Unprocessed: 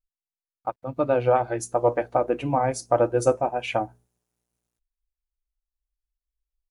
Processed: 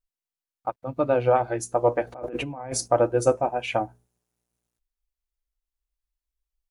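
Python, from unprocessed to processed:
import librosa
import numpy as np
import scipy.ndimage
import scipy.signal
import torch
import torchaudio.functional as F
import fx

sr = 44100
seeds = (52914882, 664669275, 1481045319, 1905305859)

y = fx.over_compress(x, sr, threshold_db=-33.0, ratio=-1.0, at=(2.07, 2.88))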